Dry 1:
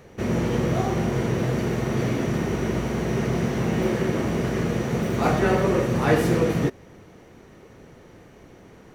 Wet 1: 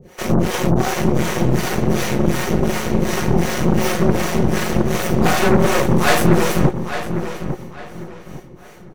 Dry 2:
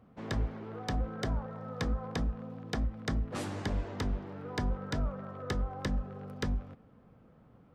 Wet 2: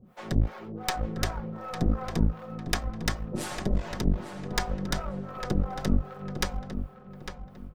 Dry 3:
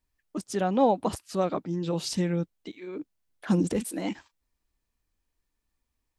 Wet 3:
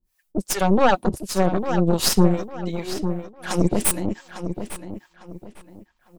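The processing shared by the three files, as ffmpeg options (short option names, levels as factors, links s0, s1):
-filter_complex "[0:a]aecho=1:1:5.5:0.54,crystalizer=i=1.5:c=0,acrossover=split=480[s0][s1];[s0]aeval=exprs='val(0)*(1-1/2+1/2*cos(2*PI*2.7*n/s))':c=same[s2];[s1]aeval=exprs='val(0)*(1-1/2-1/2*cos(2*PI*2.7*n/s))':c=same[s3];[s2][s3]amix=inputs=2:normalize=0,aeval=exprs='0.299*(cos(1*acos(clip(val(0)/0.299,-1,1)))-cos(1*PI/2))+0.0531*(cos(8*acos(clip(val(0)/0.299,-1,1)))-cos(8*PI/2))':c=same,asplit=2[s4][s5];[s5]adelay=852,lowpass=f=3700:p=1,volume=0.355,asplit=2[s6][s7];[s7]adelay=852,lowpass=f=3700:p=1,volume=0.31,asplit=2[s8][s9];[s9]adelay=852,lowpass=f=3700:p=1,volume=0.31,asplit=2[s10][s11];[s11]adelay=852,lowpass=f=3700:p=1,volume=0.31[s12];[s4][s6][s8][s10][s12]amix=inputs=5:normalize=0,volume=2.24"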